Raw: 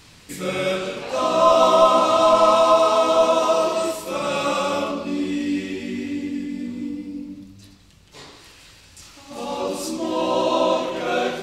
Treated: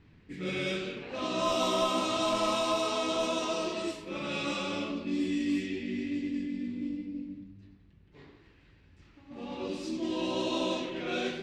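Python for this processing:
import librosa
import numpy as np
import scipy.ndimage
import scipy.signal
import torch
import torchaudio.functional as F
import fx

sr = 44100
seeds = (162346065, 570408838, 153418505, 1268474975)

y = fx.band_shelf(x, sr, hz=830.0, db=-9.5, octaves=1.7)
y = fx.cheby_harmonics(y, sr, harmonics=(4, 6), levels_db=(-25, -27), full_scale_db=-11.0)
y = fx.env_lowpass(y, sr, base_hz=1200.0, full_db=-18.5)
y = F.gain(torch.from_numpy(y), -6.0).numpy()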